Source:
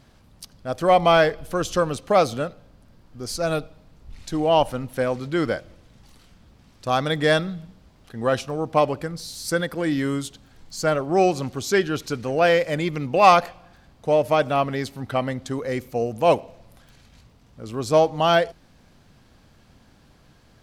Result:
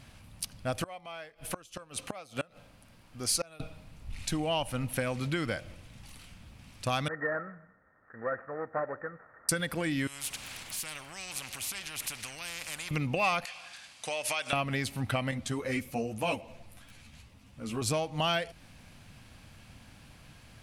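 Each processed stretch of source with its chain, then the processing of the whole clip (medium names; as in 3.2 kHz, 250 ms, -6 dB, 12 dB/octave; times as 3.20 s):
0.82–3.60 s: bass shelf 190 Hz -10 dB + inverted gate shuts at -18 dBFS, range -27 dB
7.08–9.49 s: CVSD coder 16 kbps + rippled Chebyshev low-pass 1.9 kHz, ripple 9 dB + tilt EQ +4 dB/octave
10.07–12.91 s: compression 2:1, threshold -45 dBFS + spectrum-flattening compressor 4:1
13.45–14.53 s: frequency weighting ITU-R 468 + compression, threshold -31 dBFS
15.31–17.82 s: peaking EQ 280 Hz +3.5 dB 0.44 oct + three-phase chorus
whole clip: dynamic bell 750 Hz, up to -4 dB, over -25 dBFS, Q 0.73; compression 6:1, threshold -27 dBFS; fifteen-band graphic EQ 100 Hz +4 dB, 400 Hz -6 dB, 2.5 kHz +8 dB, 10 kHz +9 dB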